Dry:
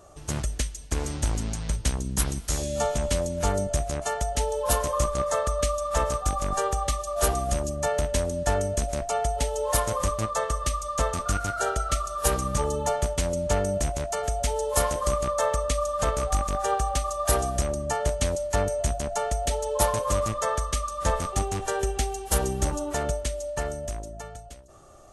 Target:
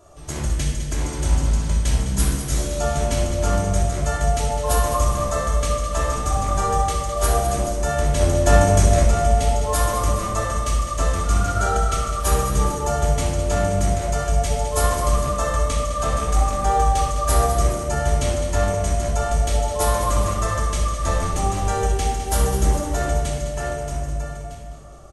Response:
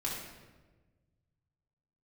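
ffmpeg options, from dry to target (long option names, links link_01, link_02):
-filter_complex "[0:a]asplit=3[link_01][link_02][link_03];[link_01]afade=type=out:start_time=8.19:duration=0.02[link_04];[link_02]acontrast=66,afade=type=in:start_time=8.19:duration=0.02,afade=type=out:start_time=9.01:duration=0.02[link_05];[link_03]afade=type=in:start_time=9.01:duration=0.02[link_06];[link_04][link_05][link_06]amix=inputs=3:normalize=0,aecho=1:1:207|414|621|828|1035|1242:0.316|0.174|0.0957|0.0526|0.0289|0.0159[link_07];[1:a]atrim=start_sample=2205[link_08];[link_07][link_08]afir=irnorm=-1:irlink=0"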